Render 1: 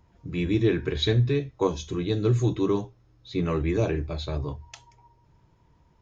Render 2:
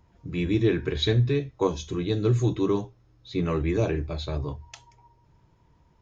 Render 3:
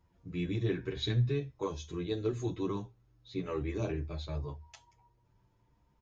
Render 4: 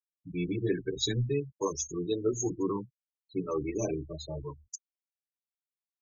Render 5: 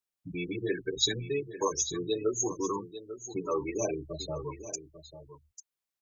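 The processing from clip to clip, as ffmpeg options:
-af anull
-filter_complex "[0:a]asplit=2[a][b];[b]adelay=8.8,afreqshift=0.42[c];[a][c]amix=inputs=2:normalize=1,volume=-6dB"
-filter_complex "[0:a]acrossover=split=410|1200[a][b][c];[c]aexciter=amount=6.2:drive=5.6:freq=5.2k[d];[a][b][d]amix=inputs=3:normalize=0,afftfilt=real='re*gte(hypot(re,im),0.0178)':imag='im*gte(hypot(re,im),0.0178)':win_size=1024:overlap=0.75,equalizer=f=80:w=0.97:g=-12.5,volume=5dB"
-filter_complex "[0:a]acrossover=split=440[a][b];[a]acompressor=threshold=-44dB:ratio=4[c];[c][b]amix=inputs=2:normalize=0,aecho=1:1:845:0.237,volume=4.5dB"

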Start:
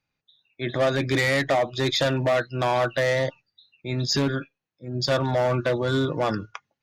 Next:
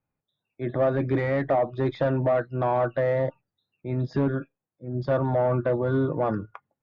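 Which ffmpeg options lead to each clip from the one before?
-af "lowpass=1.1k"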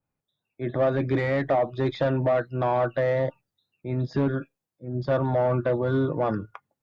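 -af "adynamicequalizer=threshold=0.00631:dfrequency=2500:dqfactor=0.7:tfrequency=2500:tqfactor=0.7:attack=5:release=100:ratio=0.375:range=3.5:mode=boostabove:tftype=highshelf"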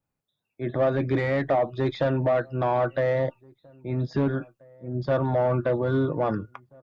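-filter_complex "[0:a]asplit=2[a][b];[b]adelay=1633,volume=-27dB,highshelf=f=4k:g=-36.7[c];[a][c]amix=inputs=2:normalize=0"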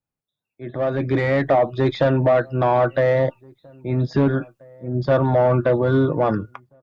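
-af "dynaudnorm=f=650:g=3:m=14dB,volume=-6dB"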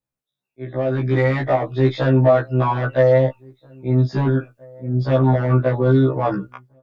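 -af "afftfilt=real='re*1.73*eq(mod(b,3),0)':imag='im*1.73*eq(mod(b,3),0)':win_size=2048:overlap=0.75,volume=2.5dB"

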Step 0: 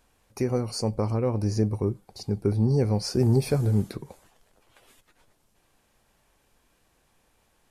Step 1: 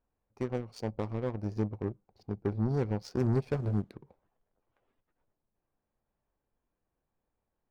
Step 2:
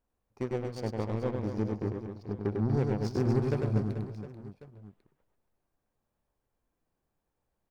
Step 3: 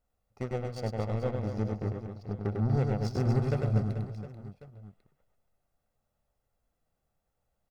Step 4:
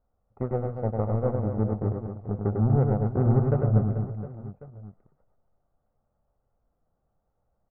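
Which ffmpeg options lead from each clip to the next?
-af "adynamicsmooth=sensitivity=7:basefreq=1.4k,aeval=exprs='0.282*(cos(1*acos(clip(val(0)/0.282,-1,1)))-cos(1*PI/2))+0.0251*(cos(7*acos(clip(val(0)/0.282,-1,1)))-cos(7*PI/2))':c=same,volume=-7dB"
-af "aecho=1:1:100|240|436|710.4|1095:0.631|0.398|0.251|0.158|0.1"
-af "aecho=1:1:1.5:0.5"
-af "lowpass=f=1.3k:w=0.5412,lowpass=f=1.3k:w=1.3066,volume=5.5dB"

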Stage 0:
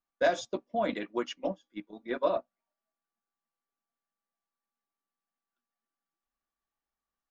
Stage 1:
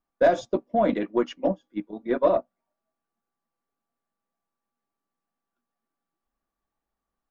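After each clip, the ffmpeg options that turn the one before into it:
-af "aeval=exprs='0.178*(cos(1*acos(clip(val(0)/0.178,-1,1)))-cos(1*PI/2))+0.00794*(cos(5*acos(clip(val(0)/0.178,-1,1)))-cos(5*PI/2))+0.00112*(cos(8*acos(clip(val(0)/0.178,-1,1)))-cos(8*PI/2))':c=same,tiltshelf=f=1.5k:g=7,volume=2dB"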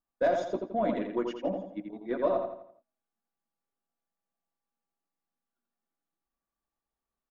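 -filter_complex "[0:a]asplit=2[a][b];[b]adelay=84,lowpass=f=4.7k:p=1,volume=-5dB,asplit=2[c][d];[d]adelay=84,lowpass=f=4.7k:p=1,volume=0.43,asplit=2[e][f];[f]adelay=84,lowpass=f=4.7k:p=1,volume=0.43,asplit=2[g][h];[h]adelay=84,lowpass=f=4.7k:p=1,volume=0.43,asplit=2[i][j];[j]adelay=84,lowpass=f=4.7k:p=1,volume=0.43[k];[a][c][e][g][i][k]amix=inputs=6:normalize=0,volume=-7.5dB"

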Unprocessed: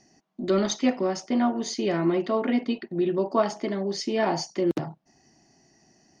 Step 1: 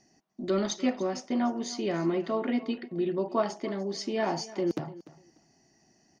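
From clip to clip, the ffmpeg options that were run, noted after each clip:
-af "aecho=1:1:296|592:0.126|0.0214,volume=-4.5dB"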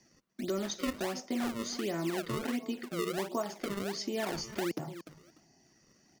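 -filter_complex "[0:a]acrossover=split=150|940|1800[a][b][c][d];[b]acrusher=samples=31:mix=1:aa=0.000001:lfo=1:lforange=49.6:lforate=1.4[e];[a][e][c][d]amix=inputs=4:normalize=0,acompressor=threshold=-33dB:ratio=2.5"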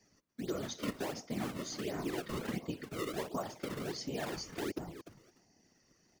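-af "afftfilt=real='hypot(re,im)*cos(2*PI*random(0))':imag='hypot(re,im)*sin(2*PI*random(1))':win_size=512:overlap=0.75,volume=2dB"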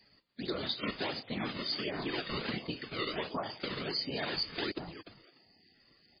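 -af "crystalizer=i=6.5:c=0" -ar 11025 -c:a libmp3lame -b:a 16k

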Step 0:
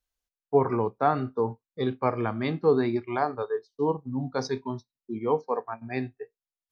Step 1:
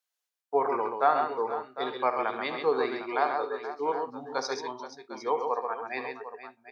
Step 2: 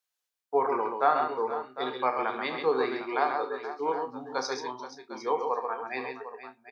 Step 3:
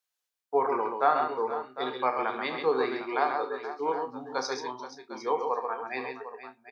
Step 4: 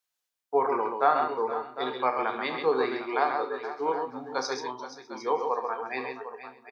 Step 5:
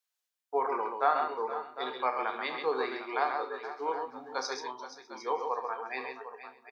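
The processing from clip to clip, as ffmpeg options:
-af "highpass=600,aecho=1:1:72|133|476|754:0.266|0.531|0.224|0.237,volume=1.5dB"
-filter_complex "[0:a]equalizer=f=640:t=o:w=0.22:g=-3,asplit=2[a][b];[b]adelay=31,volume=-10dB[c];[a][c]amix=inputs=2:normalize=0"
-af anull
-af "aecho=1:1:467|934:0.1|0.03,volume=1dB"
-af "highpass=f=500:p=1,volume=-2.5dB"

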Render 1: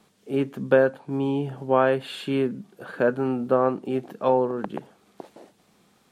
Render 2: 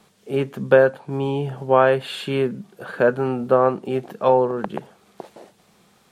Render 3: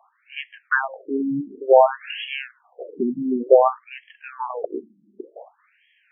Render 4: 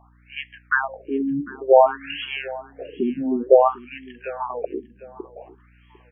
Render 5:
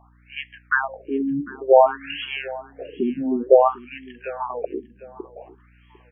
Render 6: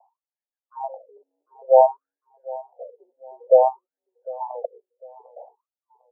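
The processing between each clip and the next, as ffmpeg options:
-af "equalizer=f=280:w=3.5:g=-7.5,volume=5dB"
-af "afftfilt=real='re*between(b*sr/1024,240*pow(2400/240,0.5+0.5*sin(2*PI*0.55*pts/sr))/1.41,240*pow(2400/240,0.5+0.5*sin(2*PI*0.55*pts/sr))*1.41)':imag='im*between(b*sr/1024,240*pow(2400/240,0.5+0.5*sin(2*PI*0.55*pts/sr))/1.41,240*pow(2400/240,0.5+0.5*sin(2*PI*0.55*pts/sr))*1.41)':win_size=1024:overlap=0.75,volume=5dB"
-af "aeval=exprs='val(0)+0.002*(sin(2*PI*60*n/s)+sin(2*PI*2*60*n/s)/2+sin(2*PI*3*60*n/s)/3+sin(2*PI*4*60*n/s)/4+sin(2*PI*5*60*n/s)/5)':c=same,aecho=1:1:751|1502:0.106|0.0318"
-af anull
-af "asuperpass=centerf=680:order=12:qfactor=1.5"

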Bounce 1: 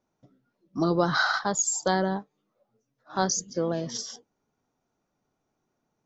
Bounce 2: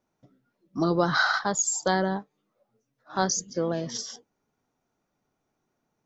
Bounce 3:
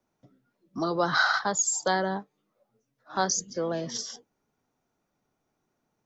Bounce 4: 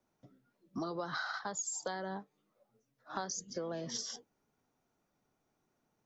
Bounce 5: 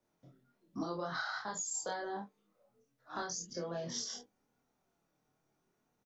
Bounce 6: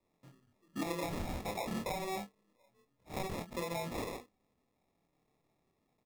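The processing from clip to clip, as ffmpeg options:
-af "equalizer=f=2k:w=1.4:g=2.5"
-filter_complex "[0:a]acrossover=split=150|430|1600[a][b][c][d];[a]acompressor=threshold=-49dB:ratio=6[e];[b]alimiter=level_in=6dB:limit=-24dB:level=0:latency=1,volume=-6dB[f];[e][f][c][d]amix=inputs=4:normalize=0"
-af "acompressor=threshold=-33dB:ratio=16,volume=-2dB"
-af "flanger=delay=22.5:depth=2.6:speed=0.57,aecho=1:1:29|45:0.631|0.188,volume=1.5dB"
-af "acrusher=samples=29:mix=1:aa=0.000001,volume=1.5dB"

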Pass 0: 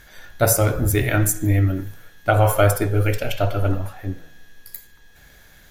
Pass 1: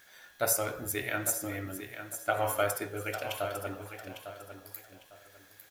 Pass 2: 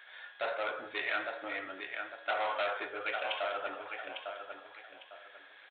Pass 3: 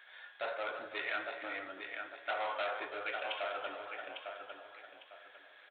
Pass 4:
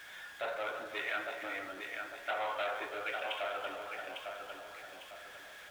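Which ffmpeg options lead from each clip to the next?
-filter_complex "[0:a]highpass=f=660:p=1,acrusher=bits=8:mix=0:aa=0.000001,asplit=2[a][b];[b]aecho=0:1:852|1704|2556:0.316|0.0854|0.0231[c];[a][c]amix=inputs=2:normalize=0,volume=-8.5dB"
-af "aresample=8000,asoftclip=type=tanh:threshold=-32dB,aresample=44100,highpass=670,volume=6dB"
-af "aecho=1:1:332:0.299,volume=-3.5dB"
-af "aeval=exprs='val(0)+0.5*0.00335*sgn(val(0))':c=same"

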